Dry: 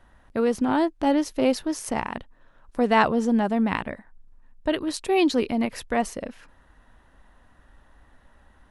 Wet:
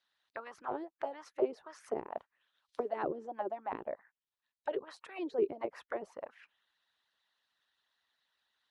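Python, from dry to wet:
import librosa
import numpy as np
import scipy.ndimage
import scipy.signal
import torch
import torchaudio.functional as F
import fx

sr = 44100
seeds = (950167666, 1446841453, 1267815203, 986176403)

y = fx.hpss(x, sr, part='harmonic', gain_db=-18)
y = fx.mod_noise(y, sr, seeds[0], snr_db=20, at=(2.17, 2.89))
y = fx.auto_wah(y, sr, base_hz=390.0, top_hz=4300.0, q=3.4, full_db=-27.0, direction='down')
y = y * librosa.db_to_amplitude(2.5)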